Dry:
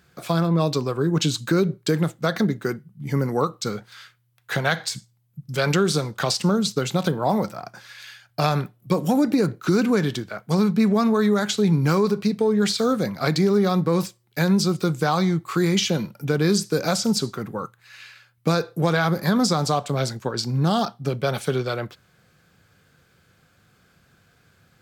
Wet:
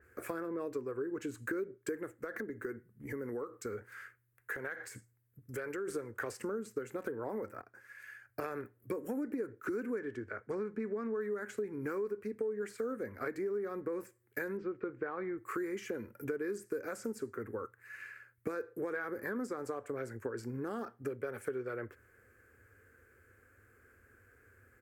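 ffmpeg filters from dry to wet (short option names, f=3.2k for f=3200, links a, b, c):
-filter_complex "[0:a]asplit=3[a][b][c];[a]afade=t=out:st=2.19:d=0.02[d];[b]acompressor=threshold=-30dB:ratio=2.5:attack=3.2:release=140:knee=1:detection=peak,afade=t=in:st=2.19:d=0.02,afade=t=out:st=5.87:d=0.02[e];[c]afade=t=in:st=5.87:d=0.02[f];[d][e][f]amix=inputs=3:normalize=0,asettb=1/sr,asplit=3[g][h][i];[g]atrim=end=9.994[j];[h]atrim=start=9.99:end=11.21,asetpts=PTS-STARTPTS,afade=t=in:d=0.004:c=qsin,afade=t=out:st=1.216:d=0.004:c=qsin,lowpass=6k[k];[i]atrim=start=11.206[l];[j][k]acrossfade=d=0.004:c1=hsin:c2=qsin[m];[m][l]acrossfade=d=0.004:c1=qsin:c2=hsin,asettb=1/sr,asplit=3[n][o][p];[n]atrim=end=14.574[q];[o]atrim=start=14.57:end=15.38,asetpts=PTS-STARTPTS,afade=t=in:d=0.004:c=qsin,afade=t=out:st=0.806:d=0.004:c=qsin,lowpass=f=3.1k:w=0.5412,lowpass=f=3.1k:w=1.3066[r];[p]atrim=start=15.376[s];[q][r]acrossfade=d=0.004:c1=hsin:c2=qsin[t];[t][s]acrossfade=d=0.004:c1=qsin:c2=hsin,asplit=2[u][v];[u]atrim=end=7.62,asetpts=PTS-STARTPTS,afade=t=out:st=7.616:d=0.004:c=hsin:silence=0.158489[w];[v]atrim=start=7.62,asetpts=PTS-STARTPTS,afade=t=in:d=0.91:silence=0.158489[x];[w][x]concat=n=2:v=0:a=1,firequalizer=gain_entry='entry(100,0);entry(160,-27);entry(230,-4);entry(440,4);entry(690,-12);entry(1700,3);entry(3600,-26);entry(7500,-7);entry(11000,-3)':delay=0.05:min_phase=1,acompressor=threshold=-35dB:ratio=4,adynamicequalizer=threshold=0.00178:dfrequency=3400:dqfactor=0.7:tfrequency=3400:tqfactor=0.7:attack=5:release=100:ratio=0.375:range=2.5:mode=cutabove:tftype=highshelf,volume=-2dB"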